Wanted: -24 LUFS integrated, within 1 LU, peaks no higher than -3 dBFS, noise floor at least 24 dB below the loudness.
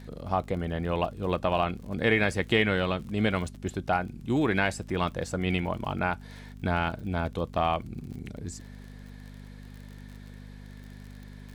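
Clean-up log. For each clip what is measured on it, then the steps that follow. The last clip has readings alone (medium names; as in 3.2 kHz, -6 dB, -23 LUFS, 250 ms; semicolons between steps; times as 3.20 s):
tick rate 40 per s; hum 50 Hz; highest harmonic 250 Hz; hum level -44 dBFS; loudness -29.0 LUFS; peak level -9.5 dBFS; loudness target -24.0 LUFS
-> de-click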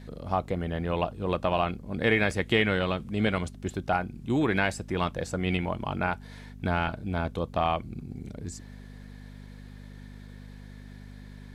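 tick rate 0 per s; hum 50 Hz; highest harmonic 250 Hz; hum level -44 dBFS
-> de-hum 50 Hz, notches 5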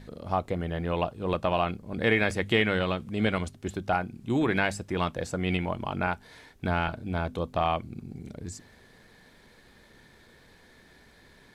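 hum not found; loudness -29.0 LUFS; peak level -9.5 dBFS; loudness target -24.0 LUFS
-> trim +5 dB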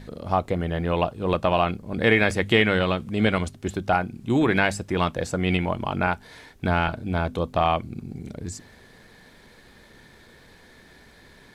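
loudness -24.0 LUFS; peak level -4.5 dBFS; noise floor -52 dBFS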